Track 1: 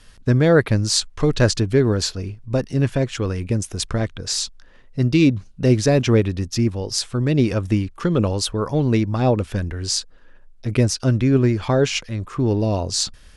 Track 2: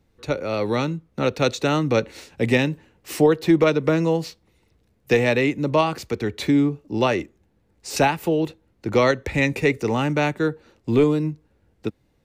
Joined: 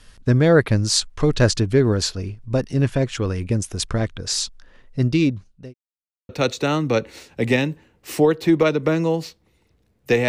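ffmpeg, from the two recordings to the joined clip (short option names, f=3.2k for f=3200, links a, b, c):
-filter_complex "[0:a]apad=whole_dur=10.28,atrim=end=10.28,asplit=2[a][b];[a]atrim=end=5.74,asetpts=PTS-STARTPTS,afade=t=out:st=4.99:d=0.75[c];[b]atrim=start=5.74:end=6.29,asetpts=PTS-STARTPTS,volume=0[d];[1:a]atrim=start=1.3:end=5.29,asetpts=PTS-STARTPTS,afade=t=in:d=0.004:c=hsin[e];[c][d][e]concat=n=3:v=0:a=1"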